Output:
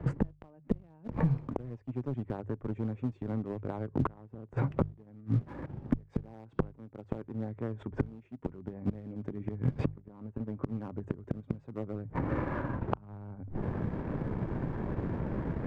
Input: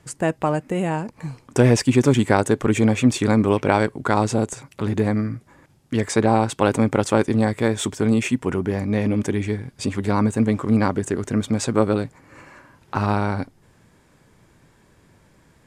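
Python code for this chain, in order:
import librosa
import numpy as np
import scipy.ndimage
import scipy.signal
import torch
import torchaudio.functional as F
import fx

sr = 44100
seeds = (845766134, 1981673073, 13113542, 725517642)

y = fx.gate_flip(x, sr, shuts_db=-16.0, range_db=-39)
y = scipy.signal.sosfilt(scipy.signal.butter(2, 2000.0, 'lowpass', fs=sr, output='sos'), y)
y = fx.tilt_shelf(y, sr, db=7.5, hz=1200.0)
y = fx.cheby_harmonics(y, sr, harmonics=(4,), levels_db=(-21,), full_scale_db=-9.0)
y = fx.low_shelf(y, sr, hz=120.0, db=7.5)
y = fx.hum_notches(y, sr, base_hz=50, count=3)
y = fx.leveller(y, sr, passes=1)
y = fx.band_squash(y, sr, depth_pct=100)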